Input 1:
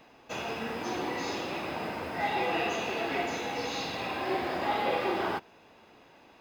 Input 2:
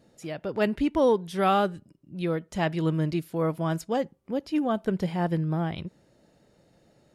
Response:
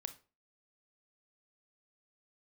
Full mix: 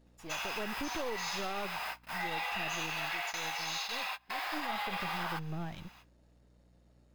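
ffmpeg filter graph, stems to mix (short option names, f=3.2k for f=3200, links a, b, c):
-filter_complex "[0:a]highpass=f=870:w=0.5412,highpass=f=870:w=1.3066,highshelf=f=8k:g=11,volume=2dB[a];[1:a]aeval=exprs='if(lt(val(0),0),0.251*val(0),val(0))':c=same,aeval=exprs='val(0)+0.00141*(sin(2*PI*60*n/s)+sin(2*PI*2*60*n/s)/2+sin(2*PI*3*60*n/s)/3+sin(2*PI*4*60*n/s)/4+sin(2*PI*5*60*n/s)/5)':c=same,volume=3.5dB,afade=t=out:st=2.61:d=0.4:silence=0.316228,afade=t=in:st=4.41:d=0.37:silence=0.316228,asplit=2[b][c];[c]apad=whole_len=282510[d];[a][d]sidechaingate=range=-34dB:threshold=-59dB:ratio=16:detection=peak[e];[e][b]amix=inputs=2:normalize=0,alimiter=level_in=2.5dB:limit=-24dB:level=0:latency=1:release=142,volume=-2.5dB"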